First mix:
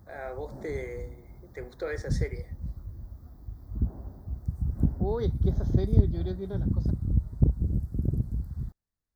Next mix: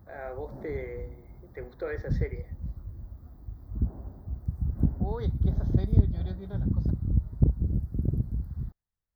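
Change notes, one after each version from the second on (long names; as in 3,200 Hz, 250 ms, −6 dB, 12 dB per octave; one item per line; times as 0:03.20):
first voice: add high-frequency loss of the air 140 metres
second voice: add parametric band 320 Hz −14 dB 0.82 octaves
master: add parametric band 7,600 Hz −11 dB 1.2 octaves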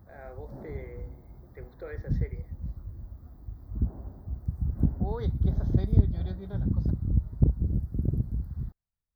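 first voice −7.0 dB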